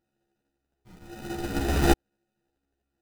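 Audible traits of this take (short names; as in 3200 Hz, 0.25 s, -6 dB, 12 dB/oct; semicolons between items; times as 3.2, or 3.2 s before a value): a buzz of ramps at a fixed pitch in blocks of 128 samples; phasing stages 4, 1 Hz, lowest notch 450–1000 Hz; aliases and images of a low sample rate 1100 Hz, jitter 0%; a shimmering, thickened sound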